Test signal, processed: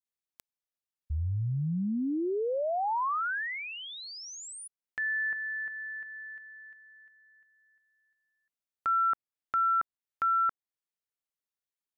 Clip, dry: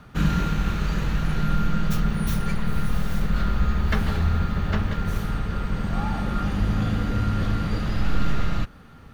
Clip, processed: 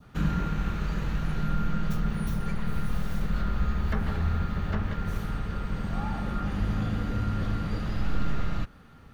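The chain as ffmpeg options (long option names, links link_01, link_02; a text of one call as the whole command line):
ffmpeg -i in.wav -filter_complex "[0:a]adynamicequalizer=threshold=0.02:dfrequency=1900:dqfactor=1:tfrequency=1900:tqfactor=1:attack=5:release=100:ratio=0.375:range=2:mode=boostabove:tftype=bell,acrossover=split=1400[link_01][link_02];[link_02]acompressor=threshold=-39dB:ratio=6[link_03];[link_01][link_03]amix=inputs=2:normalize=0,volume=-5dB" out.wav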